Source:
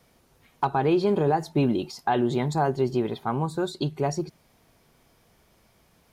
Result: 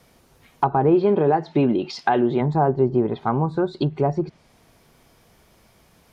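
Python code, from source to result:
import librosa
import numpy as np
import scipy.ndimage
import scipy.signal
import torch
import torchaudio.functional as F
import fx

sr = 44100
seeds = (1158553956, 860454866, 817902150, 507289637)

y = fx.weighting(x, sr, curve='D', at=(0.94, 2.4), fade=0.02)
y = fx.env_lowpass_down(y, sr, base_hz=1100.0, full_db=-21.5)
y = y * 10.0 ** (5.5 / 20.0)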